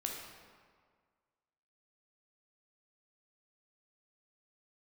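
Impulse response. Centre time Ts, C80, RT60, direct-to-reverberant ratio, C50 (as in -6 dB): 67 ms, 4.0 dB, 1.8 s, -0.5 dB, 2.0 dB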